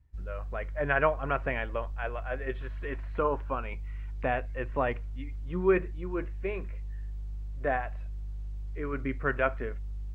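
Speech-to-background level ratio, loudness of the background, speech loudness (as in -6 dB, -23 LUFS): 8.5 dB, -41.0 LUFS, -32.5 LUFS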